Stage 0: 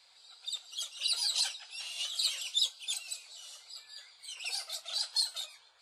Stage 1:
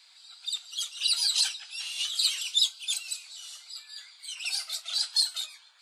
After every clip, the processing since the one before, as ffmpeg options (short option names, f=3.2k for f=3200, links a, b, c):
-af "highpass=1.2k,volume=5.5dB"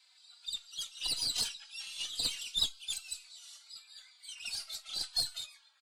-filter_complex "[0:a]aeval=exprs='0.266*(cos(1*acos(clip(val(0)/0.266,-1,1)))-cos(1*PI/2))+0.0841*(cos(2*acos(clip(val(0)/0.266,-1,1)))-cos(2*PI/2))':c=same,asplit=2[a][b];[b]adelay=3.4,afreqshift=-1[c];[a][c]amix=inputs=2:normalize=1,volume=-5dB"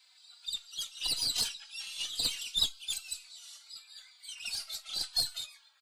-af "aexciter=amount=1.6:drive=1.4:freq=12k,volume=2dB"